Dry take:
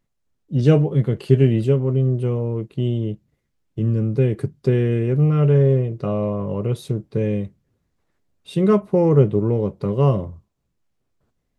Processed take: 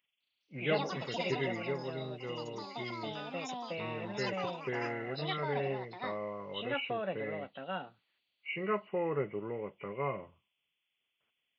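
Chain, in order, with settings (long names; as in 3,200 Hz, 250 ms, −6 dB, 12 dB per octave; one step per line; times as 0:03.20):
hearing-aid frequency compression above 1,900 Hz 4 to 1
first difference
delay with pitch and tempo change per echo 205 ms, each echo +5 semitones, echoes 3
level +7.5 dB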